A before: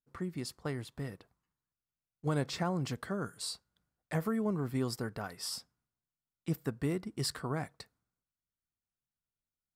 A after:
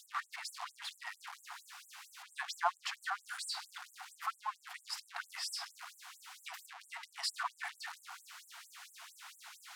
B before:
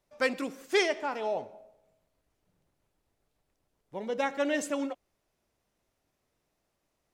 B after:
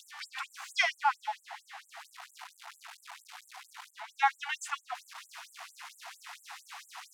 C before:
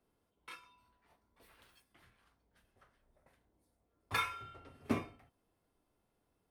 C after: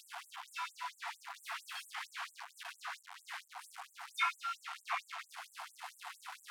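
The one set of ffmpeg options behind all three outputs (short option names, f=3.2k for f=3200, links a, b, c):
-af "aeval=exprs='val(0)+0.5*0.0133*sgn(val(0))':c=same,aemphasis=mode=reproduction:type=riaa,afftfilt=real='re*gte(b*sr/1024,670*pow(7400/670,0.5+0.5*sin(2*PI*4.4*pts/sr)))':imag='im*gte(b*sr/1024,670*pow(7400/670,0.5+0.5*sin(2*PI*4.4*pts/sr)))':win_size=1024:overlap=0.75,volume=6.5dB"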